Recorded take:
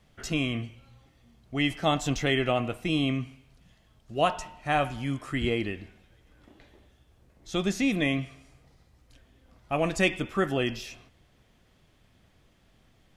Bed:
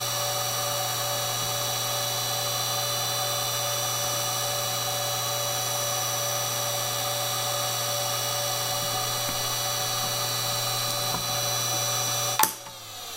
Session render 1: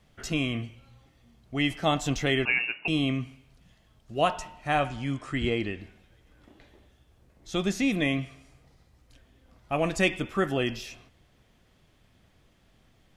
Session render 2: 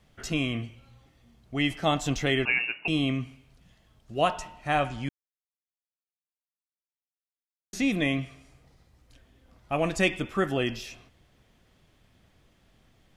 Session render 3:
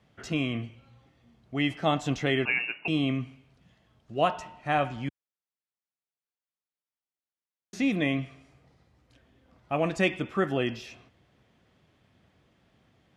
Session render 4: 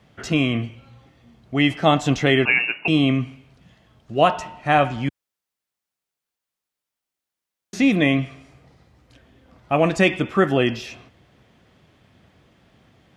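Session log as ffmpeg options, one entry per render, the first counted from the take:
ffmpeg -i in.wav -filter_complex "[0:a]asettb=1/sr,asplit=3[link_01][link_02][link_03];[link_01]atrim=end=2.454[link_04];[link_02]atrim=start=2.45:end=2.88,asetpts=PTS-STARTPTS,afade=type=in:duration=0.004:curve=qsin,afade=type=out:start_time=0.426:duration=0.004:curve=qsin,lowpass=frequency=2500:width_type=q:width=0.5098,lowpass=frequency=2500:width_type=q:width=0.6013,lowpass=frequency=2500:width_type=q:width=0.9,lowpass=frequency=2500:width_type=q:width=2.563,afreqshift=-2900[link_05];[link_03]atrim=start=2.876[link_06];[link_04][link_05]acrossfade=duration=0.004:curve1=hsin:curve2=qsin[link_07];[link_07][link_06]acrossfade=duration=0.004:curve1=qsin:curve2=hsin,asettb=1/sr,asplit=3[link_08][link_09][link_10];[link_08]atrim=end=4.804[link_11];[link_09]atrim=start=4.8:end=5.8,asetpts=PTS-STARTPTS,afade=type=in:duration=0.004:curve=qsin,afade=type=out:start_time=0.996:duration=0.004:curve=qsin,lowpass=frequency=8900:width=0.5412,lowpass=frequency=8900:width=1.3066[link_12];[link_10]atrim=start=5.796[link_13];[link_11][link_12]acrossfade=duration=0.004:curve1=hsin:curve2=qsin[link_14];[link_14][link_13]acrossfade=duration=0.004:curve1=qsin:curve2=hsin" out.wav
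ffmpeg -i in.wav -filter_complex "[0:a]asplit=3[link_01][link_02][link_03];[link_01]atrim=end=5.09,asetpts=PTS-STARTPTS,afade=type=out:start_time=5.086:duration=0.004:curve=hsin[link_04];[link_02]atrim=start=5.09:end=7.73,asetpts=PTS-STARTPTS,volume=0[link_05];[link_03]atrim=start=7.73,asetpts=PTS-STARTPTS,afade=type=in:duration=0.004:curve=hsin[link_06];[link_04][link_05][link_06]concat=n=3:v=0:a=1" out.wav
ffmpeg -i in.wav -af "highpass=87,aemphasis=mode=reproduction:type=50kf" out.wav
ffmpeg -i in.wav -af "volume=9dB,alimiter=limit=-3dB:level=0:latency=1" out.wav

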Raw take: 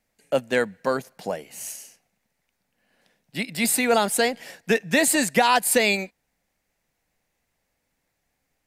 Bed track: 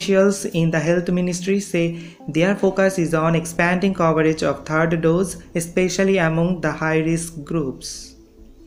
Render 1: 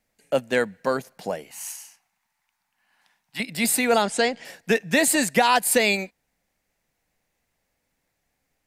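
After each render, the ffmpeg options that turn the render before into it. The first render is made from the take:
ffmpeg -i in.wav -filter_complex "[0:a]asettb=1/sr,asplit=3[link_01][link_02][link_03];[link_01]atrim=end=1.514[link_04];[link_02]atrim=start=1.51:end=3.4,asetpts=PTS-STARTPTS,afade=type=in:duration=0.004:curve=qsin,afade=type=out:start_time=1.886:duration=0.004:curve=qsin,lowshelf=frequency=680:width_type=q:width=3:gain=-10[link_05];[link_03]atrim=start=3.396[link_06];[link_04][link_05]acrossfade=duration=0.004:curve1=hsin:curve2=qsin[link_07];[link_07][link_06]acrossfade=duration=0.004:curve1=qsin:curve2=hsin,asettb=1/sr,asplit=3[link_08][link_09][link_10];[link_08]atrim=end=4.024[link_11];[link_09]atrim=start=4.02:end=4.45,asetpts=PTS-STARTPTS,afade=type=in:duration=0.004:curve=qsin,afade=type=out:start_time=0.426:duration=0.004:curve=qsin,lowpass=frequency=7700:width=0.5412,lowpass=frequency=7700:width=1.3066[link_12];[link_10]atrim=start=4.446[link_13];[link_11][link_12]acrossfade=duration=0.004:curve1=hsin:curve2=qsin[link_14];[link_14][link_13]acrossfade=duration=0.004:curve1=qsin:curve2=hsin" out.wav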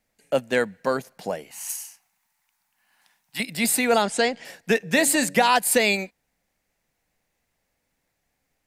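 ffmpeg -i in.wav -filter_complex "[0:a]asettb=1/sr,asplit=3[link_01][link_02][link_03];[link_01]atrim=end=1.694[link_04];[link_02]atrim=start=1.69:end=3.55,asetpts=PTS-STARTPTS,afade=type=in:duration=0.004:curve=qsin,afade=type=out:start_time=1.856:duration=0.004:curve=qsin,highshelf=frequency=6800:gain=9.5[link_05];[link_03]atrim=start=3.546[link_06];[link_04][link_05]acrossfade=duration=0.004:curve1=hsin:curve2=qsin[link_07];[link_07][link_06]acrossfade=duration=0.004:curve1=qsin:curve2=hsin,asplit=3[link_08][link_09][link_10];[link_08]afade=type=out:start_time=4.82:duration=0.02[link_11];[link_09]bandreject=frequency=94.1:width_type=h:width=4,bandreject=frequency=188.2:width_type=h:width=4,bandreject=frequency=282.3:width_type=h:width=4,bandreject=frequency=376.4:width_type=h:width=4,bandreject=frequency=470.5:width_type=h:width=4,bandreject=frequency=564.6:width_type=h:width=4,afade=type=in:start_time=4.82:duration=0.02,afade=type=out:start_time=5.49:duration=0.02[link_12];[link_10]afade=type=in:start_time=5.49:duration=0.02[link_13];[link_11][link_12][link_13]amix=inputs=3:normalize=0" out.wav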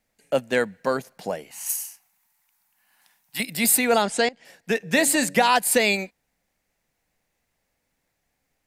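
ffmpeg -i in.wav -filter_complex "[0:a]asettb=1/sr,asplit=3[link_01][link_02][link_03];[link_01]atrim=end=1.664[link_04];[link_02]atrim=start=1.66:end=3.78,asetpts=PTS-STARTPTS,afade=type=in:duration=0.004:curve=qsin,afade=type=out:start_time=2.116:duration=0.004:curve=qsin,equalizer=frequency=14000:width_type=o:width=0.89:gain=8[link_05];[link_03]atrim=start=3.776[link_06];[link_04][link_05]acrossfade=duration=0.004:curve1=hsin:curve2=qsin[link_07];[link_07][link_06]acrossfade=duration=0.004:curve1=qsin:curve2=hsin,asplit=2[link_08][link_09];[link_08]atrim=end=4.29,asetpts=PTS-STARTPTS,afade=type=out:start_time=4.286:duration=0.004:curve=hsin:silence=0.125893[link_10];[link_09]atrim=start=4.29,asetpts=PTS-STARTPTS,afade=type=in:duration=0.65:silence=0.125893[link_11];[link_10][link_11]concat=n=2:v=0:a=1" out.wav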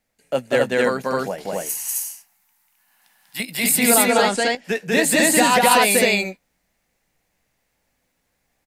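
ffmpeg -i in.wav -filter_complex "[0:a]asplit=2[link_01][link_02];[link_02]adelay=16,volume=-12dB[link_03];[link_01][link_03]amix=inputs=2:normalize=0,asplit=2[link_04][link_05];[link_05]aecho=0:1:192.4|262.4:0.891|1[link_06];[link_04][link_06]amix=inputs=2:normalize=0" out.wav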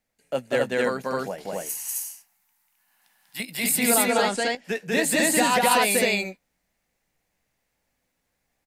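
ffmpeg -i in.wav -af "volume=-5dB" out.wav

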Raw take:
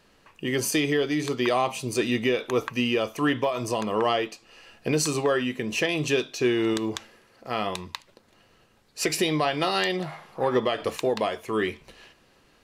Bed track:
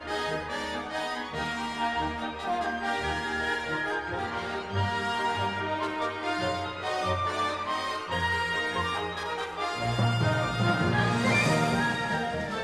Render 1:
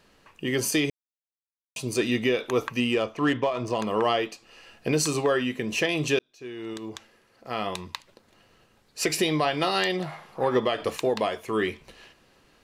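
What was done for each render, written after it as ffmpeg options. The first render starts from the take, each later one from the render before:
ffmpeg -i in.wav -filter_complex "[0:a]asettb=1/sr,asplit=3[link_01][link_02][link_03];[link_01]atrim=end=2.804[link_04];[link_02]atrim=start=2.8:end=3.79,asetpts=PTS-STARTPTS,afade=type=in:duration=0.004:curve=qsin,afade=type=out:start_time=0.986:duration=0.004:curve=qsin,adynamicsmooth=sensitivity=3:basefreq=3300[link_05];[link_03]atrim=start=3.786[link_06];[link_04][link_05]acrossfade=duration=0.004:curve1=hsin:curve2=qsin[link_07];[link_07][link_06]acrossfade=duration=0.004:curve1=qsin:curve2=hsin,asplit=4[link_08][link_09][link_10][link_11];[link_08]atrim=end=0.9,asetpts=PTS-STARTPTS,afade=type=out:start_time=0.896:duration=0.004:curve=hsin[link_12];[link_09]atrim=start=0.9:end=1.76,asetpts=PTS-STARTPTS,volume=0[link_13];[link_10]atrim=start=1.76:end=6.19,asetpts=PTS-STARTPTS,afade=type=in:duration=0.004:curve=hsin,afade=type=out:start_time=4.426:duration=0.004:curve=hsin[link_14];[link_11]atrim=start=6.19,asetpts=PTS-STARTPTS,afade=type=in:duration=1.75[link_15];[link_12][link_13][link_14][link_15]concat=n=4:v=0:a=1" out.wav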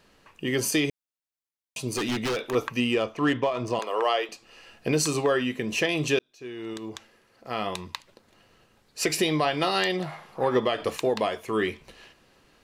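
ffmpeg -i in.wav -filter_complex "[0:a]asettb=1/sr,asplit=3[link_01][link_02][link_03];[link_01]atrim=end=1.904[link_04];[link_02]atrim=start=1.9:end=2.55,asetpts=PTS-STARTPTS,afade=type=in:duration=0.004:curve=qsin,afade=type=out:start_time=0.646:duration=0.004:curve=qsin,aeval=exprs='0.0794*(abs(mod(val(0)/0.0794+3,4)-2)-1)':channel_layout=same[link_05];[link_03]atrim=start=2.546[link_06];[link_04][link_05]acrossfade=duration=0.004:curve1=hsin:curve2=qsin[link_07];[link_07][link_06]acrossfade=duration=0.004:curve1=qsin:curve2=hsin,asettb=1/sr,asplit=3[link_08][link_09][link_10];[link_08]atrim=end=3.794[link_11];[link_09]atrim=start=3.79:end=4.29,asetpts=PTS-STARTPTS,afade=type=in:duration=0.004:curve=qsin,afade=type=out:start_time=0.496:duration=0.004:curve=qsin,highpass=frequency=410:width=0.5412,highpass=frequency=410:width=1.3066[link_12];[link_10]atrim=start=4.286[link_13];[link_11][link_12]acrossfade=duration=0.004:curve1=hsin:curve2=qsin[link_14];[link_14][link_13]acrossfade=duration=0.004:curve1=qsin:curve2=hsin" out.wav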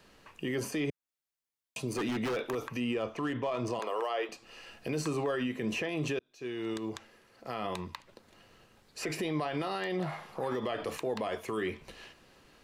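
ffmpeg -i in.wav -filter_complex "[0:a]acrossover=split=110|2300[link_01][link_02][link_03];[link_01]acompressor=threshold=-48dB:ratio=4[link_04];[link_02]acompressor=threshold=-24dB:ratio=4[link_05];[link_03]acompressor=threshold=-45dB:ratio=4[link_06];[link_04][link_05][link_06]amix=inputs=3:normalize=0,acrossover=split=7100[link_07][link_08];[link_07]alimiter=level_in=0.5dB:limit=-24dB:level=0:latency=1:release=43,volume=-0.5dB[link_09];[link_09][link_08]amix=inputs=2:normalize=0" out.wav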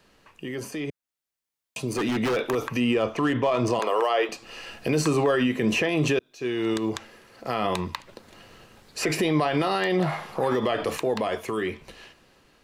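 ffmpeg -i in.wav -af "dynaudnorm=framelen=560:gausssize=7:maxgain=10dB" out.wav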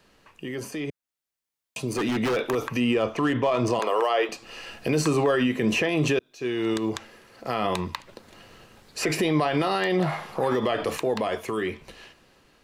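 ffmpeg -i in.wav -af anull out.wav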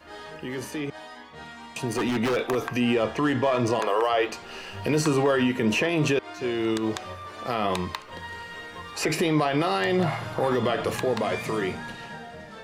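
ffmpeg -i in.wav -i bed.wav -filter_complex "[1:a]volume=-10.5dB[link_01];[0:a][link_01]amix=inputs=2:normalize=0" out.wav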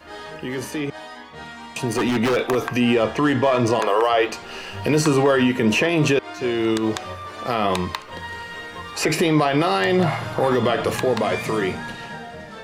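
ffmpeg -i in.wav -af "volume=5dB" out.wav

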